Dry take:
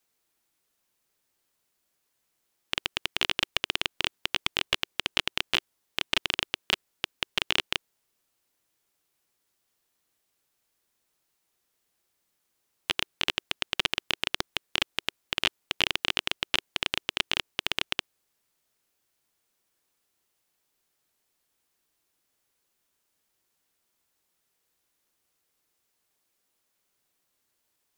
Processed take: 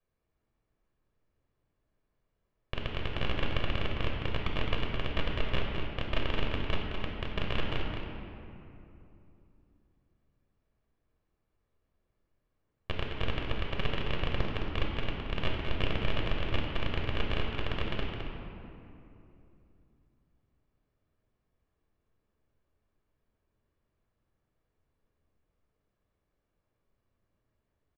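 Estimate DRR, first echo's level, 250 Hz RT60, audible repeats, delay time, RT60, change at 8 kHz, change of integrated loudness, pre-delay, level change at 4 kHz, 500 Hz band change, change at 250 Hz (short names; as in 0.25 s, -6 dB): -1.5 dB, -7.0 dB, 3.6 s, 2, 0.213 s, 2.8 s, under -20 dB, -6.0 dB, 8 ms, -11.5 dB, +3.5 dB, +6.0 dB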